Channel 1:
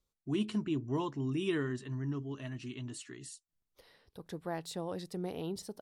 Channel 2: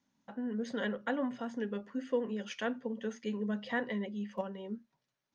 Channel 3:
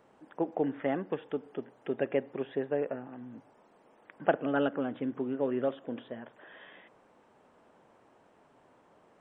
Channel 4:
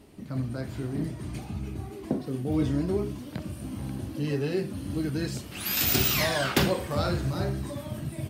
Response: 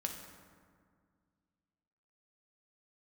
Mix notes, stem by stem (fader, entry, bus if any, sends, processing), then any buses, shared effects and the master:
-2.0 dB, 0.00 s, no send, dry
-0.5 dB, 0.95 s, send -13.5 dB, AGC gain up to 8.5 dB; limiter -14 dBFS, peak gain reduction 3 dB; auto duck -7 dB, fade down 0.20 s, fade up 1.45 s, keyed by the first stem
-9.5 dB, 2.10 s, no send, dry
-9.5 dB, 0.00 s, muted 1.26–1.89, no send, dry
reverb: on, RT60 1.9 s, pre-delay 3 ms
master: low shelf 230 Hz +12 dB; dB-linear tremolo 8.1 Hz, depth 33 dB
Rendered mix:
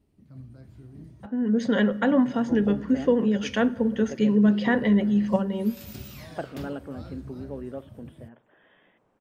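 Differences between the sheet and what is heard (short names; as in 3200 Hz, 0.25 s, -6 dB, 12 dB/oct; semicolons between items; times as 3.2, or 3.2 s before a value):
stem 1: muted; stem 4 -9.5 dB -> -21.0 dB; master: missing dB-linear tremolo 8.1 Hz, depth 33 dB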